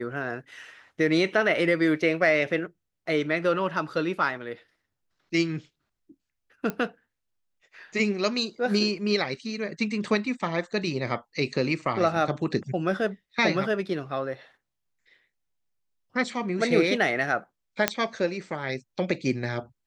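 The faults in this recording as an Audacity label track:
6.700000	6.700000	pop -16 dBFS
17.880000	17.880000	pop -4 dBFS

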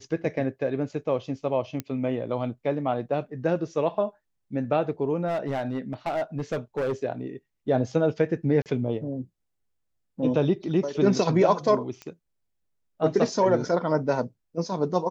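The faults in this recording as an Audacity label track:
1.800000	1.800000	pop -16 dBFS
5.270000	6.930000	clipped -23 dBFS
8.620000	8.660000	dropout 38 ms
12.020000	12.020000	pop -24 dBFS

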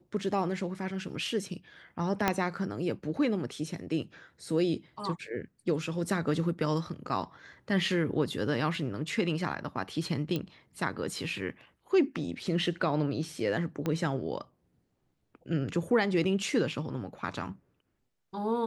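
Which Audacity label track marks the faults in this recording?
2.280000	2.280000	pop -10 dBFS
10.360000	10.360000	pop -19 dBFS
13.860000	13.860000	pop -18 dBFS

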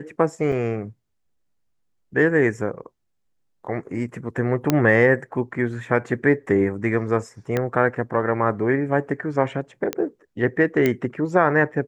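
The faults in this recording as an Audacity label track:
0.520000	0.520000	dropout 4.6 ms
4.700000	4.700000	pop -4 dBFS
7.570000	7.570000	pop -10 dBFS
9.930000	9.930000	pop -9 dBFS
10.860000	10.860000	pop -8 dBFS

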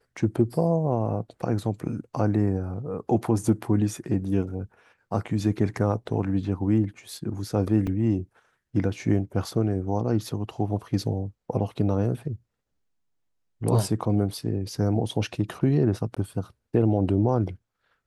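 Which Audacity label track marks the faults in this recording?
7.870000	7.870000	dropout 3.6 ms
16.150000	16.170000	dropout 16 ms

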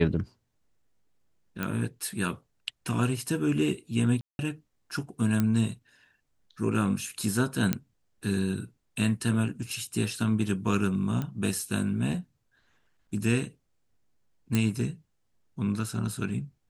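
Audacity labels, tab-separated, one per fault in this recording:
1.630000	1.630000	pop -16 dBFS
4.210000	4.390000	dropout 181 ms
5.400000	5.400000	pop -13 dBFS
7.730000	7.730000	pop -10 dBFS
11.220000	11.220000	pop -20 dBFS
14.550000	14.550000	pop -12 dBFS

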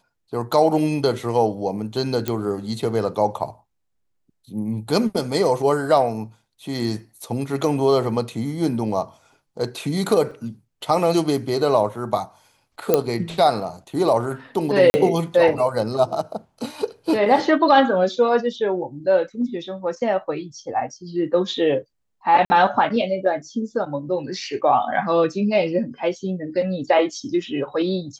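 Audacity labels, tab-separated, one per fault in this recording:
2.280000	2.280000	pop -9 dBFS
10.310000	10.310000	dropout 3.7 ms
12.940000	12.940000	pop -3 dBFS
14.900000	14.940000	dropout 40 ms
22.450000	22.500000	dropout 50 ms

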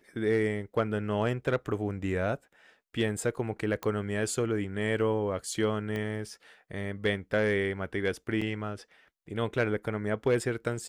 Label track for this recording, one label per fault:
3.830000	3.830000	pop -19 dBFS
5.960000	5.960000	pop -22 dBFS
8.410000	8.420000	dropout 5.1 ms

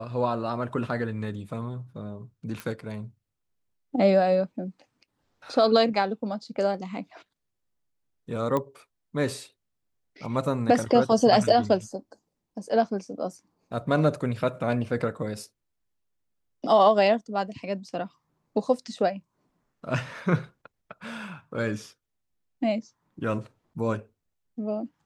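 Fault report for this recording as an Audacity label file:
2.600000	2.600000	pop
8.570000	8.570000	pop -15 dBFS

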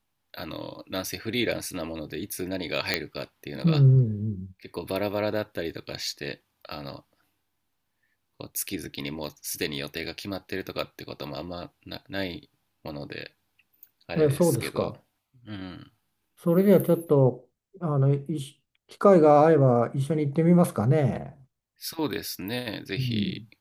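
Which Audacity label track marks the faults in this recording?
2.940000	2.940000	pop -7 dBFS

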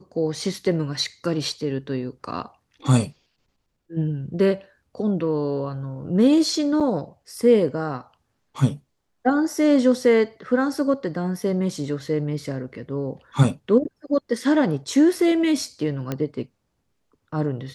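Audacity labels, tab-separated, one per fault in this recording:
6.800000	6.810000	dropout 6.7 ms
16.120000	16.120000	pop -13 dBFS

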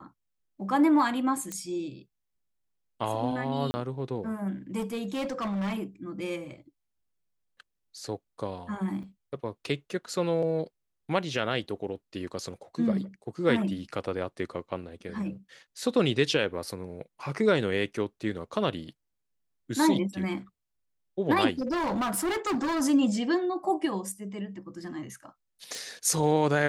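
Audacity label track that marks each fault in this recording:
1.520000	1.520000	pop -19 dBFS
3.710000	3.740000	dropout 30 ms
4.780000	5.840000	clipped -27.5 dBFS
9.030000	9.030000	dropout 4.9 ms
21.500000	22.820000	clipped -25.5 dBFS
25.750000	25.750000	pop

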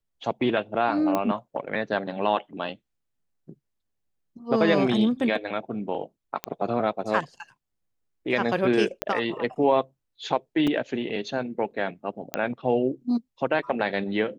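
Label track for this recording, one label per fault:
1.150000	1.150000	pop -12 dBFS
6.440000	6.440000	pop -12 dBFS
9.020000	9.020000	pop -9 dBFS
10.670000	10.670000	dropout 4.8 ms
12.340000	12.340000	pop -10 dBFS

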